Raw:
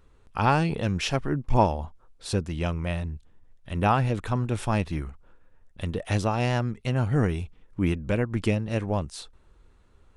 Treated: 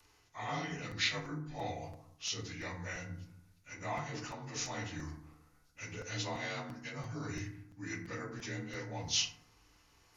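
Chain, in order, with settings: frequency axis rescaled in octaves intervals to 88%; peaking EQ 120 Hz +3 dB 1.7 oct; reverse; compression 6:1, threshold -33 dBFS, peak gain reduction 16 dB; reverse; pre-emphasis filter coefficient 0.97; FDN reverb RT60 0.7 s, low-frequency decay 1.45×, high-frequency decay 0.4×, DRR 0.5 dB; crackling interface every 0.34 s, samples 256, repeat, from 0.91 s; trim +15 dB

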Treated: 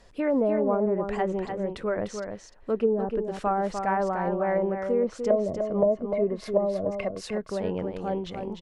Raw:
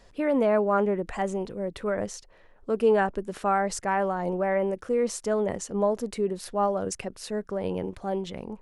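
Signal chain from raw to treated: 5.30–7.21 s: small resonant body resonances 640/1100/2100 Hz, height 16 dB, ringing for 55 ms; low-pass that closes with the level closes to 370 Hz, closed at -17 dBFS; delay 299 ms -6.5 dB

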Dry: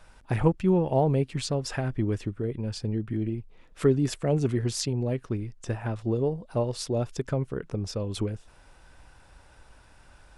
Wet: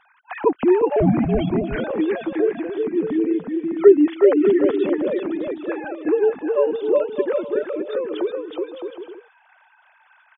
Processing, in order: formants replaced by sine waves; bouncing-ball echo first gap 370 ms, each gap 0.65×, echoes 5; 0.96–1.84 s: frequency shift -180 Hz; trim +6 dB

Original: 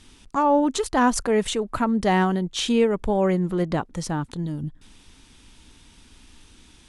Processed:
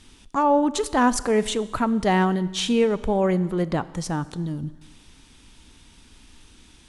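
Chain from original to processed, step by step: Schroeder reverb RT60 1.4 s, combs from 29 ms, DRR 16.5 dB

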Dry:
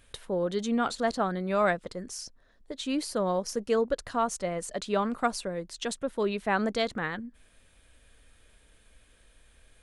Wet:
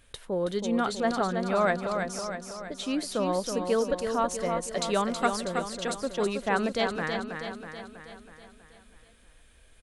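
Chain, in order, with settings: 4.74–5.30 s: treble shelf 3.2 kHz +10.5 dB; feedback delay 323 ms, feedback 56%, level -6 dB

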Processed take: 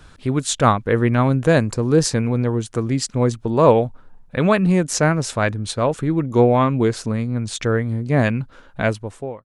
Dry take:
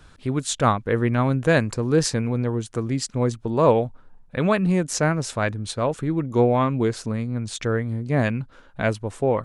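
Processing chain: fade out at the end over 0.66 s; 1.26–2.11 s: dynamic bell 2.1 kHz, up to -5 dB, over -34 dBFS, Q 0.7; trim +4 dB

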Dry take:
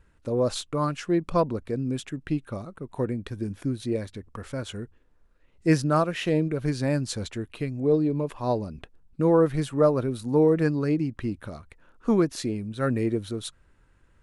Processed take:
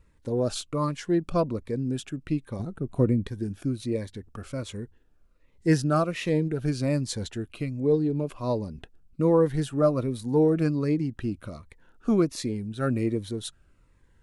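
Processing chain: 2.59–3.27 s: bass shelf 470 Hz +8.5 dB; Shepard-style phaser falling 1.3 Hz

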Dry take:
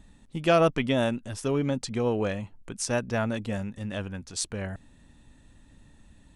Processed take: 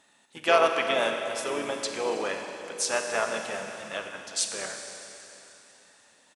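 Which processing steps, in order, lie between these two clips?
Chebyshev shaper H 3 -39 dB, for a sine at -9 dBFS; high-pass 660 Hz 12 dB/octave; Schroeder reverb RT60 3.4 s, combs from 31 ms, DRR 4 dB; harmony voices -7 st -15 dB, -4 st -10 dB; trim +3 dB

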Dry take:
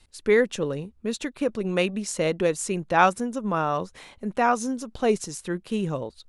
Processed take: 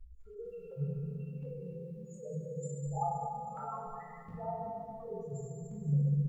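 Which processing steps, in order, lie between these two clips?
spectral levelling over time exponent 0.6; feedback comb 51 Hz, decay 0.41 s, harmonics all, mix 40%; loudest bins only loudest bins 2; resonant low shelf 210 Hz +12 dB, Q 3; tremolo saw down 1.4 Hz, depth 85%; vibrato 4.5 Hz 19 cents; amplifier tone stack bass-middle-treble 10-0-10; feedback delay 436 ms, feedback 24%, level -16 dB; FDN reverb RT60 2 s, low-frequency decay 1.5×, high-frequency decay 0.95×, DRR -4 dB; chorus 0.45 Hz, delay 17 ms, depth 5.7 ms; formant-preserving pitch shift -1 st; bit-crushed delay 196 ms, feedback 35%, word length 13-bit, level -10.5 dB; trim +5.5 dB

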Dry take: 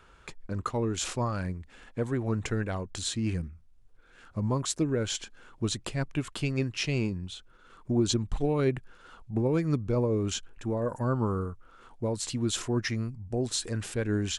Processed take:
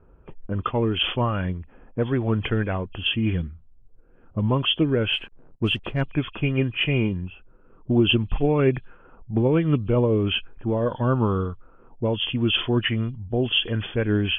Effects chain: knee-point frequency compression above 2.4 kHz 4:1; 5.13–6.01 s: hysteresis with a dead band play -45 dBFS; level-controlled noise filter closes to 480 Hz, open at -22.5 dBFS; trim +6.5 dB

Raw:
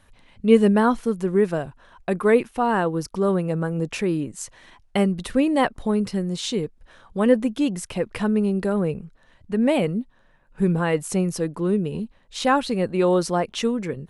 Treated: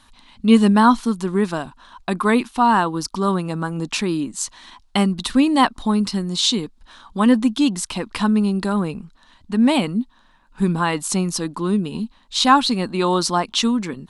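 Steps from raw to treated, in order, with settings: graphic EQ 125/250/500/1000/2000/4000/8000 Hz -8/+8/-11/+10/-3/+11/+5 dB; trim +1.5 dB

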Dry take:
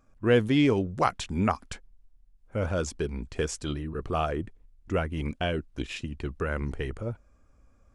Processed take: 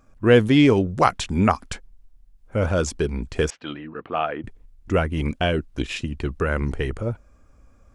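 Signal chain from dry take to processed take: 3.50–4.44 s: cabinet simulation 320–3000 Hz, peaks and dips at 390 Hz -10 dB, 580 Hz -4 dB, 1.1 kHz -4 dB; trim +7 dB

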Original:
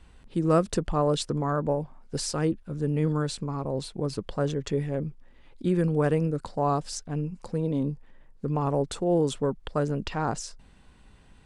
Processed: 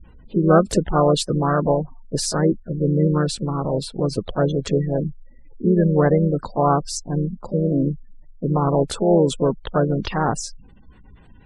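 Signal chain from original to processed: harmony voices +3 st -8 dB; spectral gate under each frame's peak -25 dB strong; trim +7 dB

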